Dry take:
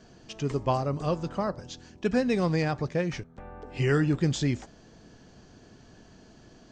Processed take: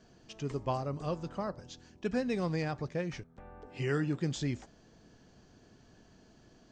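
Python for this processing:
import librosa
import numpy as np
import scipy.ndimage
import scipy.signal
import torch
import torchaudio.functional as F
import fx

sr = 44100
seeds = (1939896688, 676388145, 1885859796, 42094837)

y = fx.highpass(x, sr, hz=110.0, slope=12, at=(3.67, 4.36))
y = F.gain(torch.from_numpy(y), -7.0).numpy()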